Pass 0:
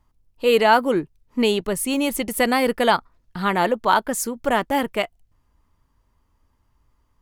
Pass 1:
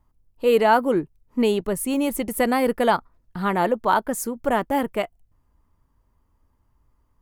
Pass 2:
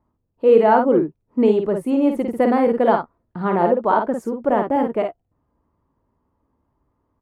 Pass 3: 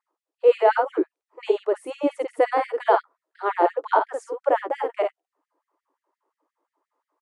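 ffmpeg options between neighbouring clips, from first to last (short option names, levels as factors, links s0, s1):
-af "equalizer=f=4000:w=0.48:g=-8"
-af "bandpass=f=390:t=q:w=0.62:csg=0,aecho=1:1:52|65:0.562|0.133,volume=1.68"
-af "aresample=22050,aresample=44100,afftfilt=real='re*gte(b*sr/1024,260*pow(1800/260,0.5+0.5*sin(2*PI*5.7*pts/sr)))':imag='im*gte(b*sr/1024,260*pow(1800/260,0.5+0.5*sin(2*PI*5.7*pts/sr)))':win_size=1024:overlap=0.75"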